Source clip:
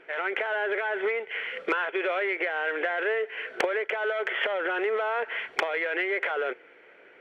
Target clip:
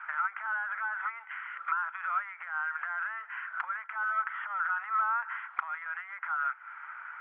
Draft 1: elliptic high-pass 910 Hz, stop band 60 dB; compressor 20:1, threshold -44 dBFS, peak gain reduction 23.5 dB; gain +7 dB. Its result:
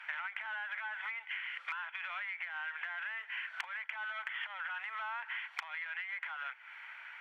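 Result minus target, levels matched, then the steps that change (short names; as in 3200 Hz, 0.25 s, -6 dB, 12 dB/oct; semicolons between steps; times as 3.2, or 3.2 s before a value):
1000 Hz band -6.0 dB
add after compressor: synth low-pass 1300 Hz, resonance Q 5.9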